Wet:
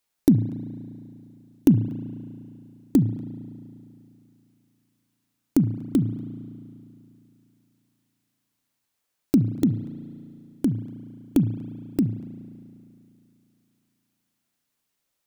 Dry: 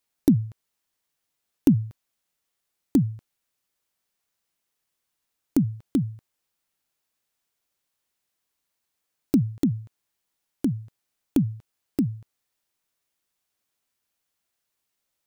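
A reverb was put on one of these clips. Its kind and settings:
spring reverb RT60 2.7 s, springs 35 ms, chirp 35 ms, DRR 10.5 dB
level +1.5 dB

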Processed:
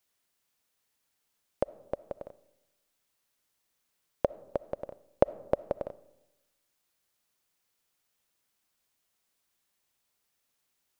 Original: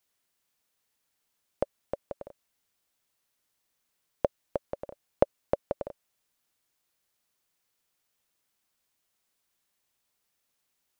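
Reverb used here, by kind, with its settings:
comb and all-pass reverb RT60 1 s, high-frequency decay 0.4×, pre-delay 20 ms, DRR 19 dB

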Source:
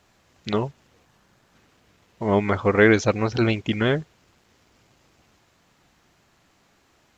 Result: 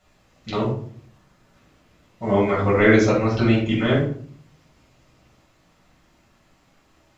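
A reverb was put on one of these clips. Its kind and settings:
rectangular room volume 500 cubic metres, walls furnished, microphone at 6.8 metres
level −8.5 dB

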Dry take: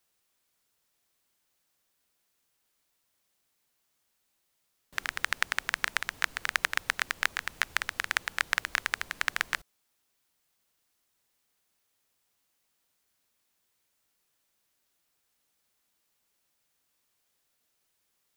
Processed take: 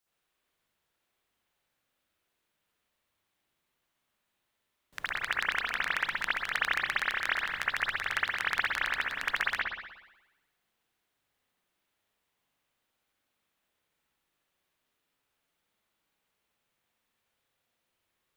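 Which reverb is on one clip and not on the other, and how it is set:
spring reverb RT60 1 s, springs 60 ms, chirp 30 ms, DRR −9 dB
level −8.5 dB

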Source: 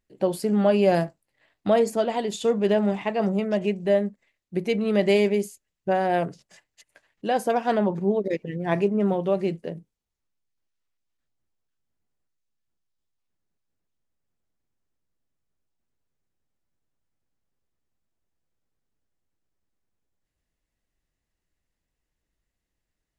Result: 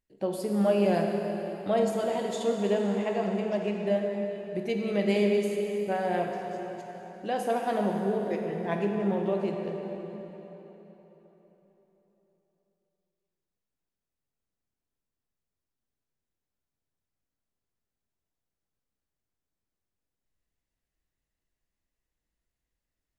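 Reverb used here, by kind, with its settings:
dense smooth reverb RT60 4 s, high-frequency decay 0.8×, DRR 1 dB
level −7 dB

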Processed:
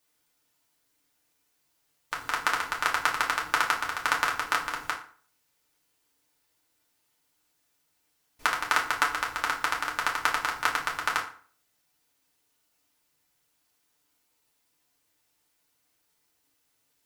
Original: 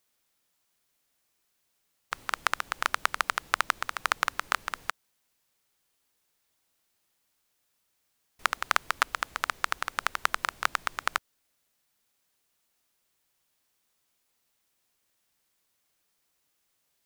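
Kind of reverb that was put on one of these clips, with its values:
feedback delay network reverb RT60 0.46 s, low-frequency decay 1.1×, high-frequency decay 0.75×, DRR −3 dB
level −2 dB

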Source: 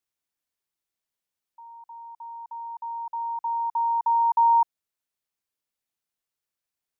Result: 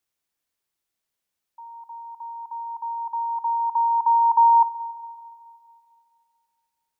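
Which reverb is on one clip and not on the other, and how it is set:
spring reverb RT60 2.4 s, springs 30/46/57 ms, chirp 25 ms, DRR 15.5 dB
level +4.5 dB

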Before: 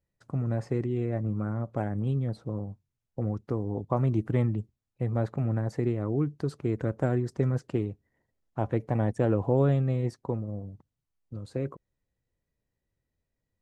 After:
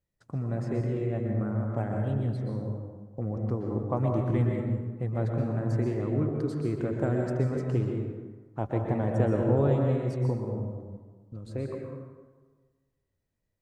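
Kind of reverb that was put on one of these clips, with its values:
dense smooth reverb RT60 1.4 s, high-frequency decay 0.55×, pre-delay 110 ms, DRR 0.5 dB
level −2.5 dB

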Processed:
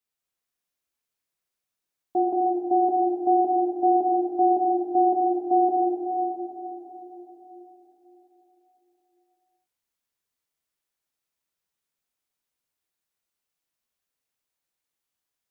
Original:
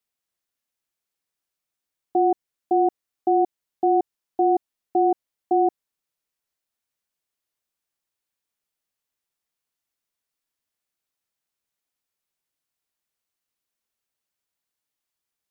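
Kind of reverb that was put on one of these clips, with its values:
dense smooth reverb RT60 4.3 s, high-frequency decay 0.85×, DRR −3.5 dB
level −5 dB

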